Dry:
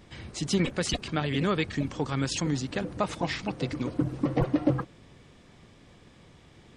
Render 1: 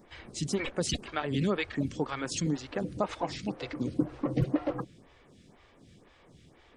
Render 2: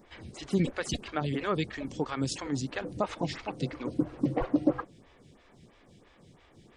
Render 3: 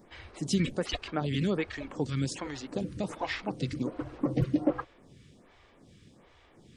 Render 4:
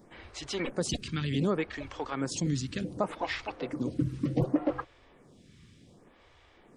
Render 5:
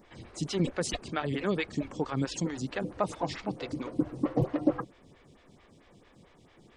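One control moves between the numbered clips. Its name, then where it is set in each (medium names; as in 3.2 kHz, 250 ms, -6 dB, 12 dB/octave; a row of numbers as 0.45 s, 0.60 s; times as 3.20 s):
lamp-driven phase shifter, rate: 2 Hz, 3 Hz, 1.3 Hz, 0.67 Hz, 4.5 Hz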